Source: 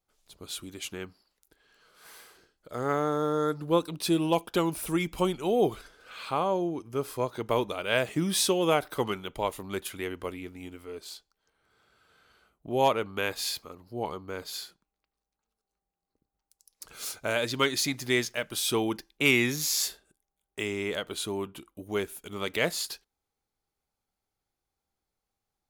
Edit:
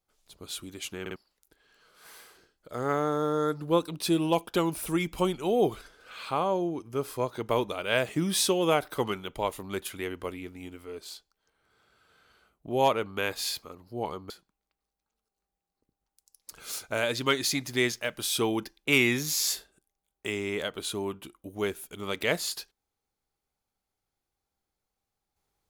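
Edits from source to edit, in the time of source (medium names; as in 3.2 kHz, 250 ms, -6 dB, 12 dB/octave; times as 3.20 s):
1.01 s: stutter in place 0.05 s, 3 plays
14.30–14.63 s: delete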